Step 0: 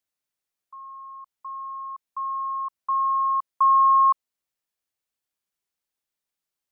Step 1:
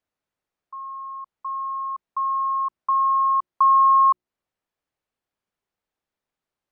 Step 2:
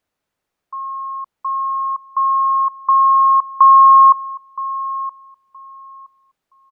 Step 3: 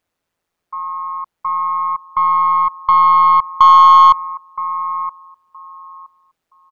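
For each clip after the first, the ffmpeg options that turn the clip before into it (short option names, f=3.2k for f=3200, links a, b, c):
-filter_complex "[0:a]lowpass=f=1.1k:p=1,bandreject=f=60:t=h:w=6,bandreject=f=120:t=h:w=6,bandreject=f=180:t=h:w=6,bandreject=f=240:t=h:w=6,bandreject=f=300:t=h:w=6,bandreject=f=360:t=h:w=6,asplit=2[a][b];[b]acompressor=threshold=-31dB:ratio=6,volume=2dB[c];[a][c]amix=inputs=2:normalize=0,volume=2dB"
-filter_complex "[0:a]asplit=2[a][b];[b]adelay=970,lowpass=f=900:p=1,volume=-12dB,asplit=2[c][d];[d]adelay=970,lowpass=f=900:p=1,volume=0.27,asplit=2[e][f];[f]adelay=970,lowpass=f=900:p=1,volume=0.27[g];[a][c][e][g]amix=inputs=4:normalize=0,volume=8dB"
-af "aeval=exprs='0.841*(cos(1*acos(clip(val(0)/0.841,-1,1)))-cos(1*PI/2))+0.0596*(cos(2*acos(clip(val(0)/0.841,-1,1)))-cos(2*PI/2))+0.0596*(cos(3*acos(clip(val(0)/0.841,-1,1)))-cos(3*PI/2))+0.00473*(cos(5*acos(clip(val(0)/0.841,-1,1)))-cos(5*PI/2))+0.0106*(cos(6*acos(clip(val(0)/0.841,-1,1)))-cos(6*PI/2))':c=same,tremolo=f=170:d=0.621,asoftclip=type=tanh:threshold=-7dB,volume=6.5dB"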